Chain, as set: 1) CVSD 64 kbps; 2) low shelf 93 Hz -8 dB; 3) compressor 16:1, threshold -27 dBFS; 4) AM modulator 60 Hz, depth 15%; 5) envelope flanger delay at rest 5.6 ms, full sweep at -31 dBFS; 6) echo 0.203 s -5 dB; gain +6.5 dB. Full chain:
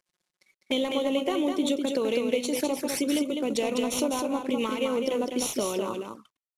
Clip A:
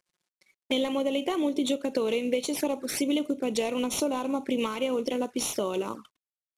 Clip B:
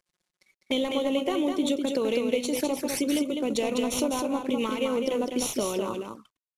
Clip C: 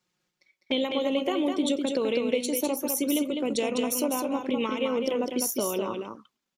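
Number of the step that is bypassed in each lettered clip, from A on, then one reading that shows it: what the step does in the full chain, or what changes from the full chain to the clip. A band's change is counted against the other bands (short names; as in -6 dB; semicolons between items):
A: 6, loudness change -1.0 LU; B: 2, 125 Hz band +1.5 dB; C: 1, 8 kHz band +1.5 dB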